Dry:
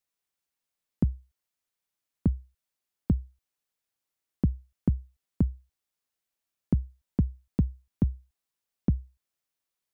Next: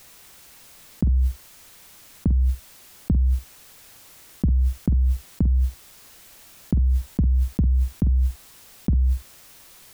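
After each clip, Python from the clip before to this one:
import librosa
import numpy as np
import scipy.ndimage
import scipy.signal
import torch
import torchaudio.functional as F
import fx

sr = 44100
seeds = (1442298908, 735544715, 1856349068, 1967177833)

y = fx.low_shelf(x, sr, hz=120.0, db=7.0)
y = fx.doubler(y, sr, ms=48.0, db=-13)
y = fx.env_flatten(y, sr, amount_pct=100)
y = y * librosa.db_to_amplitude(-2.0)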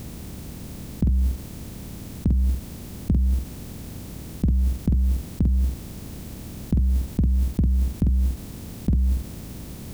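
y = fx.bin_compress(x, sr, power=0.4)
y = fx.end_taper(y, sr, db_per_s=300.0)
y = y * librosa.db_to_amplitude(-2.0)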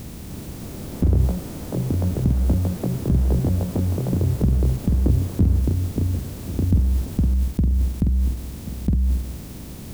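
y = fx.echo_pitch(x, sr, ms=309, semitones=6, count=3, db_per_echo=-3.0)
y = y + 10.0 ** (-13.5 / 20.0) * np.pad(y, (int(1085 * sr / 1000.0), 0))[:len(y)]
y = y * librosa.db_to_amplitude(1.0)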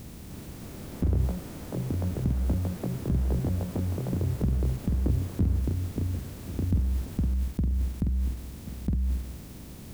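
y = fx.dynamic_eq(x, sr, hz=1700.0, q=0.76, threshold_db=-48.0, ratio=4.0, max_db=4)
y = y * librosa.db_to_amplitude(-7.5)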